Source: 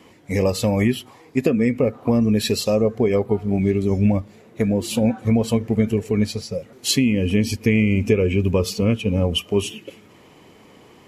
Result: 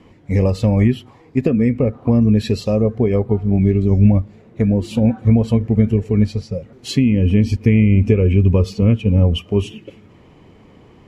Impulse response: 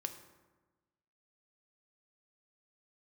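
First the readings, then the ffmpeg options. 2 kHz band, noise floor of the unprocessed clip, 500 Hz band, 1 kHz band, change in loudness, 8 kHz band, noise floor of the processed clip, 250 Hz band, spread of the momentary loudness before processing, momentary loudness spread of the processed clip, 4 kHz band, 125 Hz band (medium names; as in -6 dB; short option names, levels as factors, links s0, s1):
-3.5 dB, -49 dBFS, +0.5 dB, -1.0 dB, +4.0 dB, no reading, -47 dBFS, +3.5 dB, 7 LU, 8 LU, -5.5 dB, +8.0 dB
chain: -af "aemphasis=mode=reproduction:type=bsi,volume=0.841"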